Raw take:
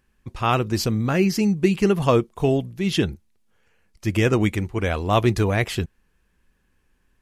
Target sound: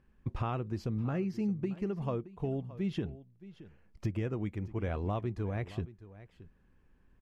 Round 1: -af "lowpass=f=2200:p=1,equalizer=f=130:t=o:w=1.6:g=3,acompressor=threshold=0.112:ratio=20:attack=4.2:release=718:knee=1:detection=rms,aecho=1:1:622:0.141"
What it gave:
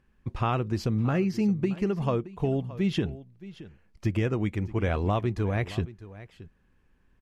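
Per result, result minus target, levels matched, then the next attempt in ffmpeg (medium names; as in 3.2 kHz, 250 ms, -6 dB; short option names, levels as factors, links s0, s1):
compression: peak gain reduction -7.5 dB; 2 kHz band +3.0 dB
-af "lowpass=f=2200:p=1,equalizer=f=130:t=o:w=1.6:g=3,acompressor=threshold=0.0447:ratio=20:attack=4.2:release=718:knee=1:detection=rms,aecho=1:1:622:0.141"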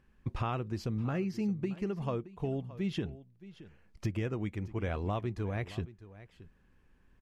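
2 kHz band +3.0 dB
-af "lowpass=f=1100:p=1,equalizer=f=130:t=o:w=1.6:g=3,acompressor=threshold=0.0447:ratio=20:attack=4.2:release=718:knee=1:detection=rms,aecho=1:1:622:0.141"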